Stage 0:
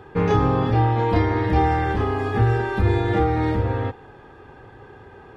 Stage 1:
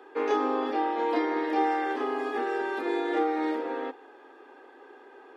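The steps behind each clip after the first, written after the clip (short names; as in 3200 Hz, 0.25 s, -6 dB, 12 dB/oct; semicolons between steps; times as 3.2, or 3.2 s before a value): steep high-pass 260 Hz 72 dB/oct; gain -5 dB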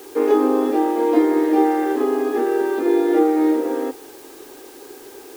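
bell 320 Hz +13.5 dB 1.9 oct; added noise white -46 dBFS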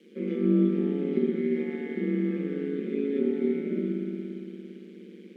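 vowel filter i; spring tank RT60 3.3 s, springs 57 ms, chirp 55 ms, DRR -2.5 dB; ring modulator 73 Hz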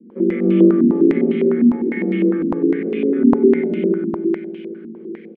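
echo 0.134 s -3.5 dB; stepped low-pass 9.9 Hz 250–2800 Hz; gain +6 dB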